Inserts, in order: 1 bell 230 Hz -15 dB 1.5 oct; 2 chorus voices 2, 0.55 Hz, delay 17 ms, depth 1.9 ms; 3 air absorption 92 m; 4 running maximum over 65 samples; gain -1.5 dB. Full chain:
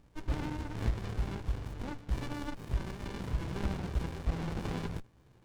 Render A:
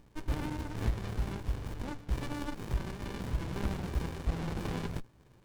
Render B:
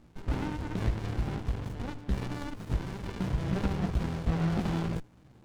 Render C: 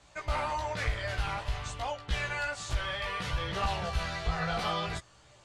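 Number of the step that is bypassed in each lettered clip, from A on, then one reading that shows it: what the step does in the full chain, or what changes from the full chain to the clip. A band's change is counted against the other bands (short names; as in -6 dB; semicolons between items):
3, 8 kHz band +2.0 dB; 1, 250 Hz band +3.0 dB; 4, 250 Hz band -15.5 dB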